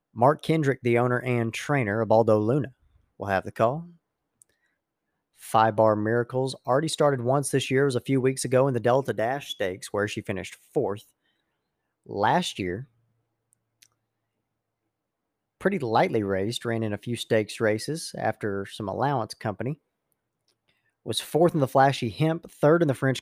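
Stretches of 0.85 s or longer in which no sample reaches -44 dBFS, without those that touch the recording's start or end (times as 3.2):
4.42–5.4
11.02–12.06
13.86–15.61
19.74–21.06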